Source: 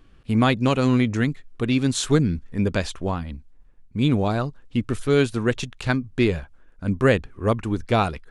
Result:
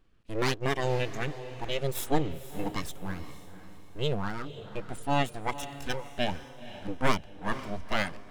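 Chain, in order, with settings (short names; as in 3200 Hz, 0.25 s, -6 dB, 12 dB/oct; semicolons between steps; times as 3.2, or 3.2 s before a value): full-wave rectifier; spectral noise reduction 8 dB; diffused feedback echo 0.501 s, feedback 40%, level -13 dB; gain -4 dB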